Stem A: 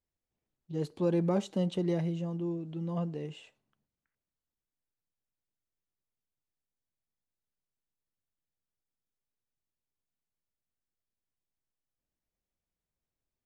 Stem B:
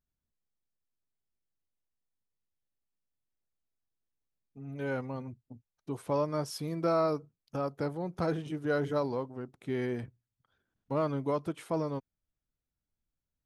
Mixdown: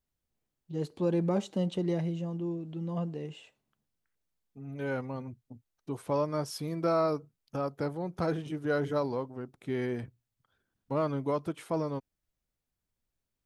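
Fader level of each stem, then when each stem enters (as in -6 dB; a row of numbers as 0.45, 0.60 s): 0.0, +0.5 dB; 0.00, 0.00 s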